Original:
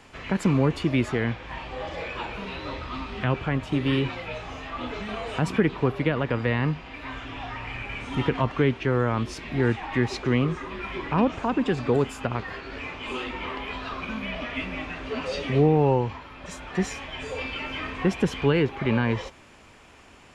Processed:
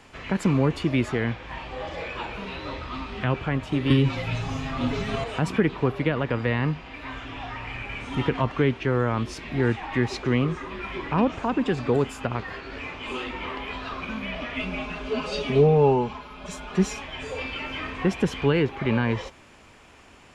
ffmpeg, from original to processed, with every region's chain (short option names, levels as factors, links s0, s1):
-filter_complex "[0:a]asettb=1/sr,asplit=3[s0][s1][s2];[s0]atrim=end=3.904[s3];[s1]atrim=start=3.9:end=5.24,asetpts=PTS-STARTPTS,afade=t=in:d=0.004:c=qsin,afade=t=out:st=1.336:d=0.004:c=qsin,bass=f=250:g=14,treble=f=4000:g=7,aecho=1:1:7.4:0.76,atrim=end_sample=59094,acrossover=split=93|250[s4][s5][s6];[s4]acompressor=threshold=0.0158:ratio=4[s7];[s5]acompressor=threshold=0.0631:ratio=4[s8];[s6]acompressor=threshold=0.0891:ratio=4[s9];[s7][s8][s9]amix=inputs=3:normalize=0[s10];[s2]atrim=start=5.236[s11];[s3][s10]acrossfade=d=0.004:c1=hsin:c2=qsin[s12];[s12][s11]acrossfade=d=0.004:c1=qsin:c2=hsin,asettb=1/sr,asplit=3[s13][s14][s15];[s13]atrim=end=14.594[s16];[s14]atrim=start=14.59:end=17.02,asetpts=PTS-STARTPTS,afade=t=in:d=0.004:c=qsin,afade=t=out:st=2.426:d=0.004:c=qsin,equalizer=f=1900:w=7.5:g=-10.5,aecho=1:1:4.8:0.8,atrim=end_sample=107163[s17];[s15]atrim=start=17.016[s18];[s16][s17]acrossfade=d=0.004:c1=hsin:c2=qsin[s19];[s19][s18]acrossfade=d=0.004:c1=qsin:c2=hsin"